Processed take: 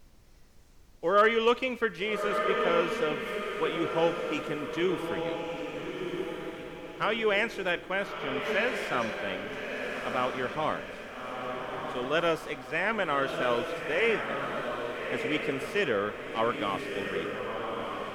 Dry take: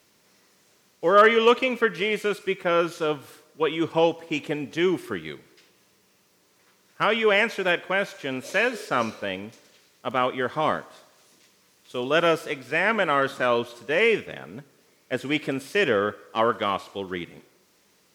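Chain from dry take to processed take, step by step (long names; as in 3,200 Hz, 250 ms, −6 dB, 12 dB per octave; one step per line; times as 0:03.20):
0:08.07–0:08.68: parametric band 8,400 Hz −12 dB 0.77 octaves
feedback delay with all-pass diffusion 1,293 ms, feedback 43%, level −4 dB
background noise brown −49 dBFS
level −6.5 dB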